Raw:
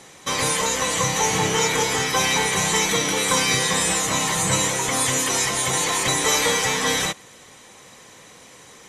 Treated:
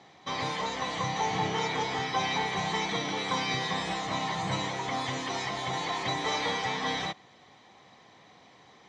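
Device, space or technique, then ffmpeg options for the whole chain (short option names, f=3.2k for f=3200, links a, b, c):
guitar cabinet: -af "highpass=78,equalizer=f=500:t=q:w=4:g=-6,equalizer=f=740:t=q:w=4:g=7,equalizer=f=1.5k:t=q:w=4:g=-5,equalizer=f=2.7k:t=q:w=4:g=-6,lowpass=f=4.4k:w=0.5412,lowpass=f=4.4k:w=1.3066,volume=-7.5dB"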